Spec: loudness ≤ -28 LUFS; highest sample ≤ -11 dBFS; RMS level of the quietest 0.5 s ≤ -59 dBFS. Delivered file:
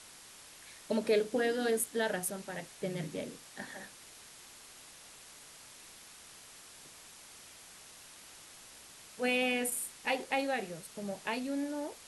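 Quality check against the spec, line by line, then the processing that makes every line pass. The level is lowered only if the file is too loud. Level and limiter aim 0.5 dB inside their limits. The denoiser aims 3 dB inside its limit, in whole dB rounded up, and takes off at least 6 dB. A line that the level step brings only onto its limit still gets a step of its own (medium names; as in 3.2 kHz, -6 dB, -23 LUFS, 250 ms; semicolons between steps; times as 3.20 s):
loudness -34.5 LUFS: pass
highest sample -18.0 dBFS: pass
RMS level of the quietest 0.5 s -54 dBFS: fail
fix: noise reduction 8 dB, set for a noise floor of -54 dBFS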